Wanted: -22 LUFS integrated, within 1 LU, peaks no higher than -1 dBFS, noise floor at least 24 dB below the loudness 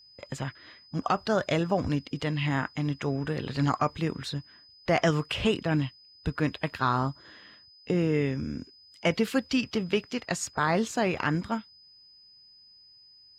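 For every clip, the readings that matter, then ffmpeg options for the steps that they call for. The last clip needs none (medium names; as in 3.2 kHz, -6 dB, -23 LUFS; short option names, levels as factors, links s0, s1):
steady tone 5 kHz; tone level -53 dBFS; loudness -29.0 LUFS; peak level -13.0 dBFS; loudness target -22.0 LUFS
-> -af "bandreject=f=5000:w=30"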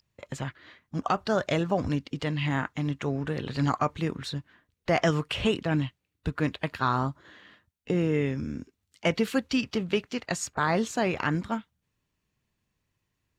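steady tone not found; loudness -29.0 LUFS; peak level -13.0 dBFS; loudness target -22.0 LUFS
-> -af "volume=2.24"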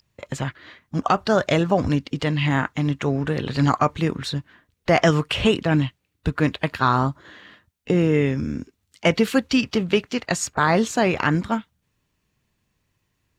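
loudness -22.0 LUFS; peak level -6.0 dBFS; noise floor -74 dBFS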